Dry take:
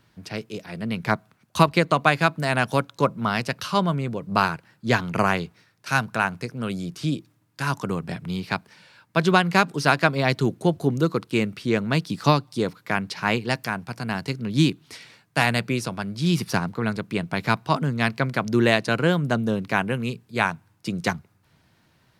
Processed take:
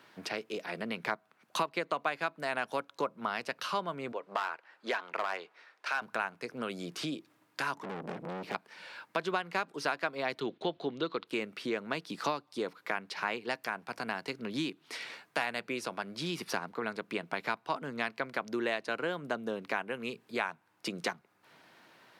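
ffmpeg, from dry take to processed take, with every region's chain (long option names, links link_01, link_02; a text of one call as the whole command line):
ffmpeg -i in.wav -filter_complex "[0:a]asettb=1/sr,asplit=3[link_01][link_02][link_03];[link_01]atrim=end=4.124[link_04];[link_02]atrim=start=4.12:end=6.02,asetpts=PTS-STARTPTS,afade=type=in:duration=0.004:curve=qsin,afade=type=out:start_time=1.896:duration=0.004:curve=qsin,highpass=540,aemphasis=mode=reproduction:type=50fm,asoftclip=type=hard:threshold=-17.5dB[link_05];[link_03]atrim=start=6.016[link_06];[link_04][link_05]acrossfade=duration=0.004:curve1=hsin:curve2=qsin[link_07];[link_07][link_06]acrossfade=duration=0.004:curve1=qsin:curve2=hsin,asettb=1/sr,asplit=3[link_08][link_09][link_10];[link_08]atrim=end=7.754[link_11];[link_09]atrim=start=7.75:end=8.55,asetpts=PTS-STARTPTS,afade=type=in:duration=0.004:curve=qsin,afade=type=out:start_time=0.796:duration=0.004:curve=qsin,aeval=exprs='if(lt(val(0),0),0.447*val(0),val(0))':channel_layout=same,equalizer=frequency=220:width=0.35:gain=13.5,aeval=exprs='(tanh(28.2*val(0)+0.55)-tanh(0.55))/28.2':channel_layout=same[link_12];[link_10]atrim=start=8.546[link_13];[link_11][link_12]acrossfade=duration=0.004:curve1=hsin:curve2=qsin[link_14];[link_14][link_13]acrossfade=duration=0.004:curve1=qsin:curve2=hsin,asettb=1/sr,asplit=3[link_15][link_16][link_17];[link_15]atrim=end=10.404[link_18];[link_16]atrim=start=10.4:end=11.27,asetpts=PTS-STARTPTS,afade=type=in:duration=0.004:curve=qsin,afade=type=out:start_time=0.866:duration=0.004:curve=qsin,lowpass=frequency=3600:width_type=q:width=3.8,agate=range=-8dB:threshold=-45dB:ratio=16:release=100:detection=peak[link_19];[link_17]atrim=start=11.266[link_20];[link_18][link_19]acrossfade=duration=0.004:curve1=hsin:curve2=qsin[link_21];[link_21][link_20]acrossfade=duration=0.004:curve1=qsin:curve2=hsin,bass=frequency=250:gain=-13,treble=frequency=4000:gain=-7,acompressor=threshold=-42dB:ratio=3,highpass=190,volume=6.5dB" out.wav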